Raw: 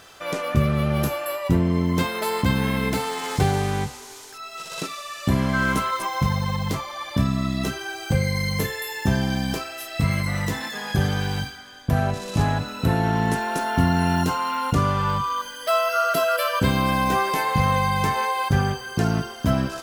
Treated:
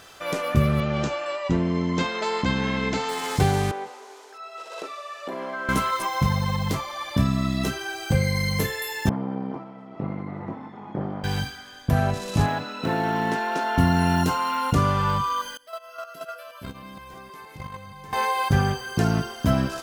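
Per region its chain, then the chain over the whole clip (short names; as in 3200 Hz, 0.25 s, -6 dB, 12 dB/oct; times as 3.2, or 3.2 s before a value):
0.8–3.09 elliptic low-pass 7100 Hz, stop band 50 dB + bell 96 Hz -9.5 dB 0.9 oct
3.71–5.69 HPF 450 Hz 24 dB/oct + tilt -4.5 dB/oct + compressor 4:1, threshold -28 dBFS
9.09–11.24 minimum comb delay 0.9 ms + Butterworth band-pass 410 Hz, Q 0.62 + echo 0.41 s -13.5 dB
12.46–13.78 BPF 230–5000 Hz + short-mantissa float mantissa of 4-bit
15.57–18.13 reverse delay 0.157 s, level -2.5 dB + gate -16 dBFS, range -22 dB + compressor 10:1, threshold -30 dBFS
whole clip: dry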